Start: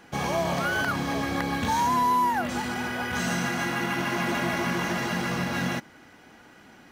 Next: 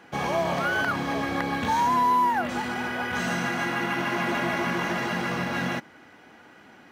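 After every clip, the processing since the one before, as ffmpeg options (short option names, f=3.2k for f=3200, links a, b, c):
-af "highpass=65,bass=f=250:g=-4,treble=f=4k:g=-7,volume=1.5dB"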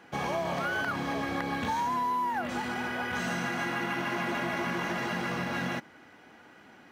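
-af "acompressor=threshold=-24dB:ratio=6,volume=-3dB"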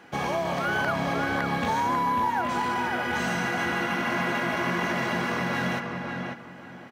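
-filter_complex "[0:a]asplit=2[a][b];[b]adelay=544,lowpass=f=2.3k:p=1,volume=-3.5dB,asplit=2[c][d];[d]adelay=544,lowpass=f=2.3k:p=1,volume=0.27,asplit=2[e][f];[f]adelay=544,lowpass=f=2.3k:p=1,volume=0.27,asplit=2[g][h];[h]adelay=544,lowpass=f=2.3k:p=1,volume=0.27[i];[a][c][e][g][i]amix=inputs=5:normalize=0,volume=3.5dB"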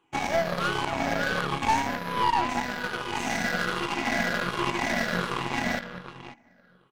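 -af "afftfilt=real='re*pow(10,15/40*sin(2*PI*(0.66*log(max(b,1)*sr/1024/100)/log(2)-(-1.3)*(pts-256)/sr)))':imag='im*pow(10,15/40*sin(2*PI*(0.66*log(max(b,1)*sr/1024/100)/log(2)-(-1.3)*(pts-256)/sr)))':win_size=1024:overlap=0.75,aeval=exprs='0.266*(cos(1*acos(clip(val(0)/0.266,-1,1)))-cos(1*PI/2))+0.0596*(cos(2*acos(clip(val(0)/0.266,-1,1)))-cos(2*PI/2))+0.00596*(cos(5*acos(clip(val(0)/0.266,-1,1)))-cos(5*PI/2))+0.0376*(cos(7*acos(clip(val(0)/0.266,-1,1)))-cos(7*PI/2))':c=same,volume=-2.5dB"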